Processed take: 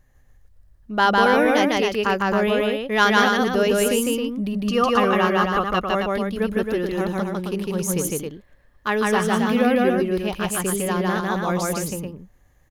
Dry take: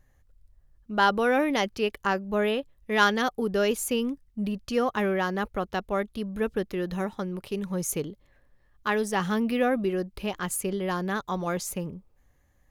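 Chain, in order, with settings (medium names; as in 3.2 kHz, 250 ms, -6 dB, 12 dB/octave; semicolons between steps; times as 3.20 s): 4.55–5.83 s: small resonant body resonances 1.2/2.8 kHz, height 12 dB, ringing for 25 ms; on a send: loudspeakers at several distances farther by 53 m -1 dB, 92 m -5 dB; on the sum: trim +3.5 dB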